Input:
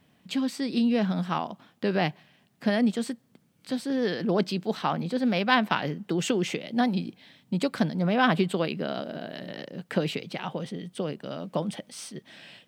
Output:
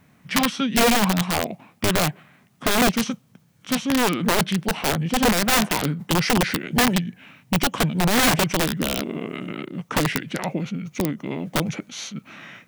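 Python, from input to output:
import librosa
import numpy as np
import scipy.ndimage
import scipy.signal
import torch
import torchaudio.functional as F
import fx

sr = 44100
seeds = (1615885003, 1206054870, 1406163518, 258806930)

y = (np.mod(10.0 ** (19.5 / 20.0) * x + 1.0, 2.0) - 1.0) / 10.0 ** (19.5 / 20.0)
y = fx.formant_shift(y, sr, semitones=-6)
y = F.gain(torch.from_numpy(y), 7.0).numpy()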